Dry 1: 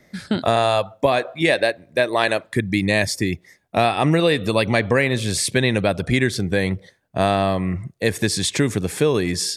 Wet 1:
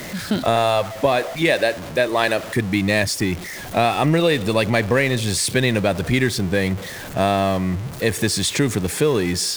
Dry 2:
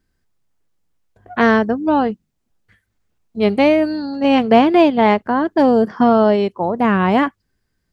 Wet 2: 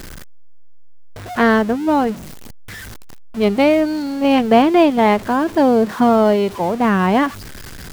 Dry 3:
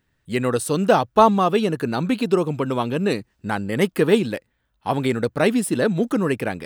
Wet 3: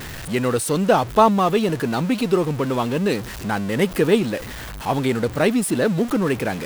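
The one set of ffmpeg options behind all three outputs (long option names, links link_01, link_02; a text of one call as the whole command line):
ffmpeg -i in.wav -af "aeval=exprs='val(0)+0.5*0.0501*sgn(val(0))':channel_layout=same,volume=-1dB" out.wav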